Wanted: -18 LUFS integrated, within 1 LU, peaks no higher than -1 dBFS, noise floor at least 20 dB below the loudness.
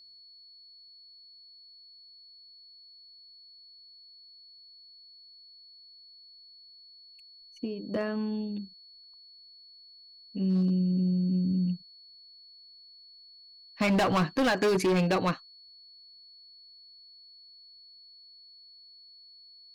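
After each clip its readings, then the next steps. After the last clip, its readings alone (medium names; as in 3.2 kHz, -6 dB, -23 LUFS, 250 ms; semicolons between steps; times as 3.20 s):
clipped samples 1.3%; clipping level -21.5 dBFS; steady tone 4.4 kHz; tone level -51 dBFS; loudness -28.5 LUFS; peak level -21.5 dBFS; loudness target -18.0 LUFS
-> clip repair -21.5 dBFS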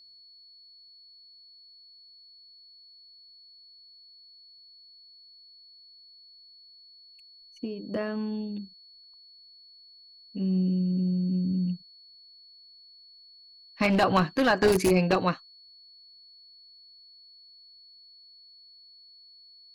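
clipped samples 0.0%; steady tone 4.4 kHz; tone level -51 dBFS
-> band-stop 4.4 kHz, Q 30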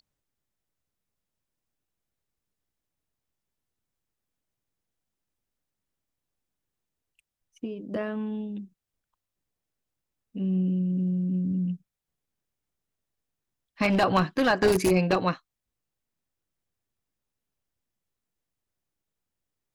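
steady tone not found; loudness -26.0 LUFS; peak level -12.0 dBFS; loudness target -18.0 LUFS
-> trim +8 dB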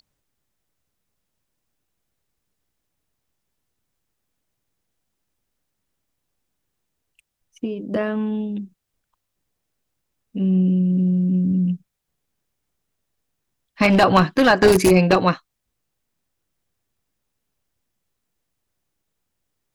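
loudness -18.0 LUFS; peak level -4.0 dBFS; noise floor -78 dBFS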